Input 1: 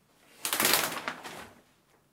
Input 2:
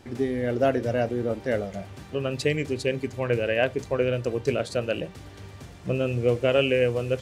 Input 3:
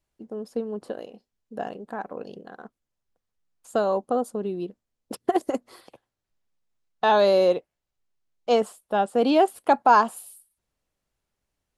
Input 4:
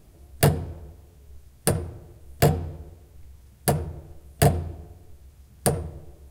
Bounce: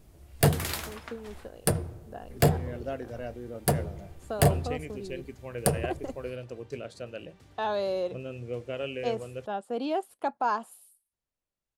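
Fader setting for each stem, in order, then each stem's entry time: -9.5, -13.0, -11.0, -3.0 dB; 0.00, 2.25, 0.55, 0.00 s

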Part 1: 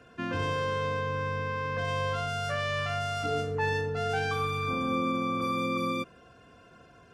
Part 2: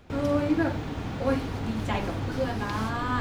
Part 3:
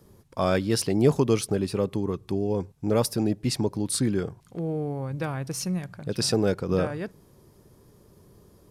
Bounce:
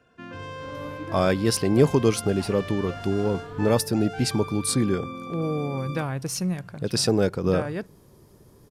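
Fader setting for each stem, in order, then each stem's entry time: -7.0, -14.0, +2.0 dB; 0.00, 0.50, 0.75 s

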